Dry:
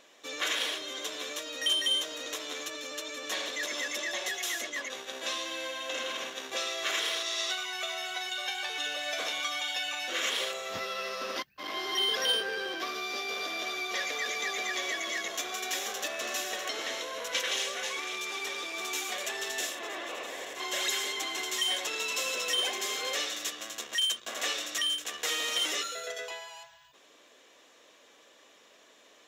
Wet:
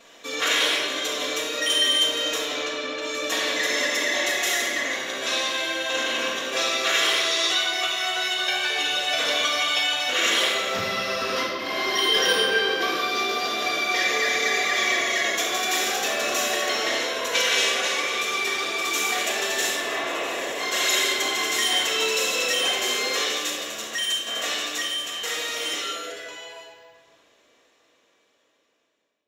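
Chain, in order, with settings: fade out at the end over 7.95 s; 2.41–3.01 s: low-pass 6.8 kHz -> 3.1 kHz 12 dB/octave; reverberation RT60 1.7 s, pre-delay 4 ms, DRR -10.5 dB

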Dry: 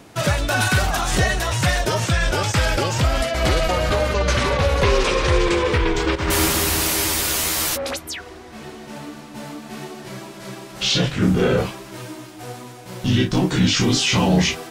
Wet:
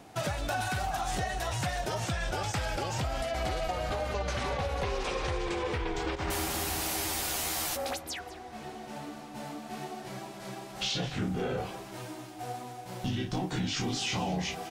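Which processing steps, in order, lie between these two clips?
peaking EQ 760 Hz +11 dB 0.26 oct; compression, threshold -21 dBFS, peak gain reduction 9.5 dB; on a send: delay 201 ms -16.5 dB; on the sum: trim -8 dB

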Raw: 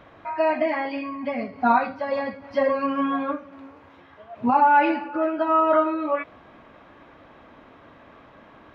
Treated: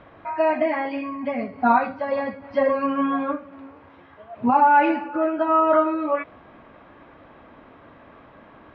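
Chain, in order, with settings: distance through air 200 m; trim +2 dB

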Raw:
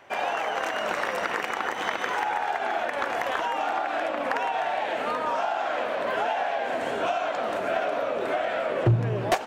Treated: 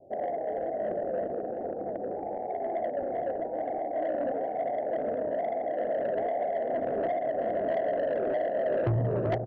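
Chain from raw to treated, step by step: steep low-pass 700 Hz 72 dB/octave; hum notches 60/120/180/240/300/360/420/480 Hz; saturation -26.5 dBFS, distortion -12 dB; on a send: delay 388 ms -9 dB; on the sum: trim +3 dB

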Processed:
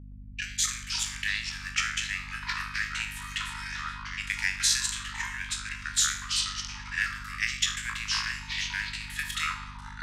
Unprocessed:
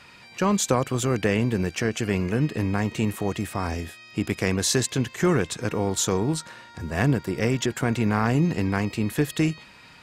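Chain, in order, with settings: spectral sustain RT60 0.64 s; level-controlled noise filter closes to 2.6 kHz, open at -19 dBFS; gate -42 dBFS, range -43 dB; steep high-pass 1.6 kHz 96 dB/octave; treble shelf 10 kHz -10.5 dB; in parallel at 0 dB: gain riding 2 s; on the sum: transient shaper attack +6 dB, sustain -3 dB; hum 50 Hz, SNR 11 dB; ever faster or slower copies 117 ms, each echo -5 st, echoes 2, each echo -6 dB; trim -8.5 dB

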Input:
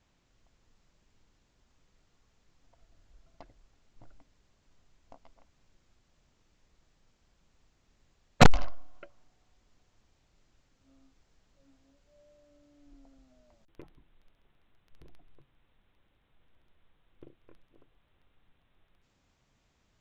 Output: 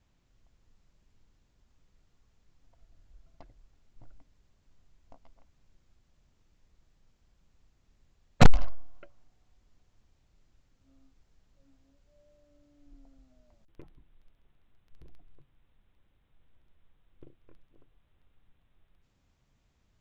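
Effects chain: bass shelf 180 Hz +8 dB; trim -4 dB

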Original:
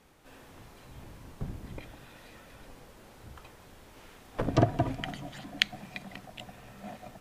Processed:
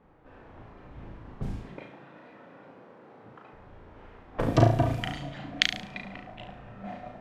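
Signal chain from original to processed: 1.61–3.53 s: high-pass 150 Hz 24 dB/octave; level-controlled noise filter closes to 1.2 kHz, open at -29.5 dBFS; flutter echo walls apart 6.1 m, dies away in 0.45 s; trim +2 dB

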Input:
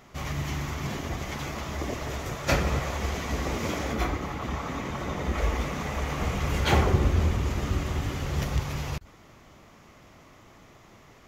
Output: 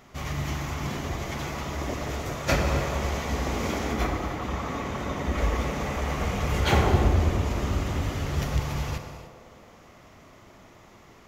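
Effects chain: band-passed feedback delay 106 ms, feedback 79%, band-pass 580 Hz, level -7 dB; gated-style reverb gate 330 ms flat, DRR 7.5 dB

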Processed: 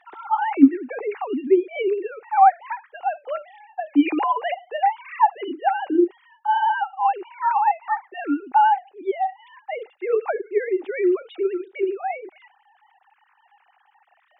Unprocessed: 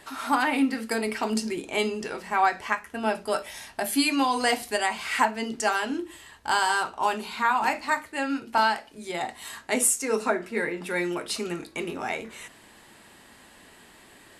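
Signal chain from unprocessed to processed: formants replaced by sine waves; small resonant body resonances 360/800 Hz, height 14 dB, ringing for 20 ms; trim -5 dB

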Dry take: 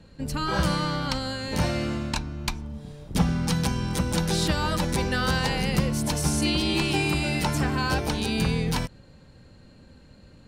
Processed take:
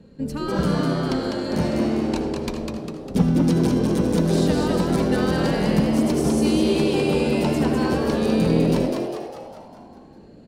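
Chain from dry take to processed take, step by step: small resonant body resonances 230/410 Hz, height 14 dB, ringing for 25 ms; frequency-shifting echo 201 ms, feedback 53%, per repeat +92 Hz, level -4 dB; reverberation RT60 0.65 s, pre-delay 69 ms, DRR 10.5 dB; trim -6 dB

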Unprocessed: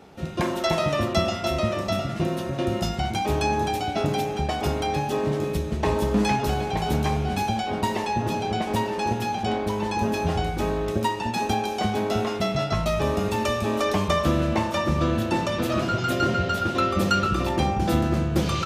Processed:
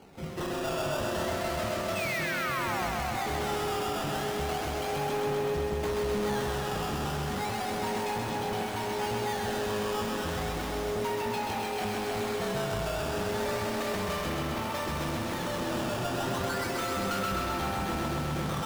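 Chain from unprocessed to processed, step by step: painted sound fall, 1.95–2.89 s, 660–2700 Hz -26 dBFS; decimation with a swept rate 12×, swing 160% 0.33 Hz; treble shelf 7.8 kHz -5 dB; hard clipper -27.5 dBFS, distortion -6 dB; thinning echo 130 ms, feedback 82%, high-pass 210 Hz, level -3.5 dB; trim -4.5 dB

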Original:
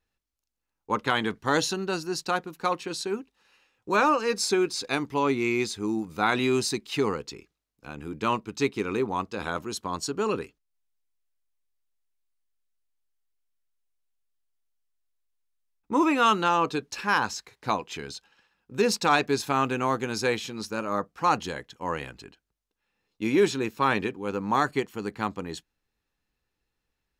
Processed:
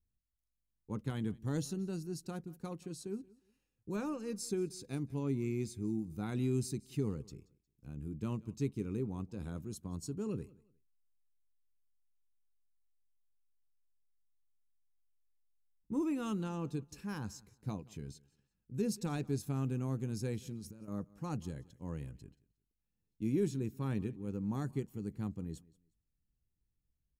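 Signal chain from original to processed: 20.45–20.88 s: compressor with a negative ratio -39 dBFS, ratio -1; FFT filter 140 Hz 0 dB, 1 kHz -27 dB, 3.9 kHz -24 dB, 9.5 kHz -10 dB; feedback delay 179 ms, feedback 25%, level -23 dB; trim +1 dB

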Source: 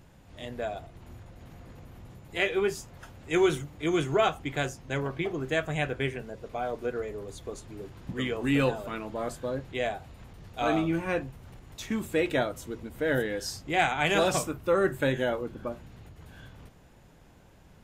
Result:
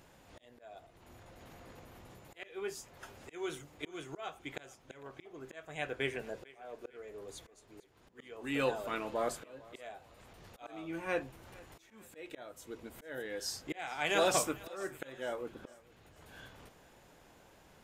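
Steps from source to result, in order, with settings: tone controls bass -11 dB, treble +1 dB; slow attack 734 ms; thinning echo 451 ms, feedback 46%, level -21 dB

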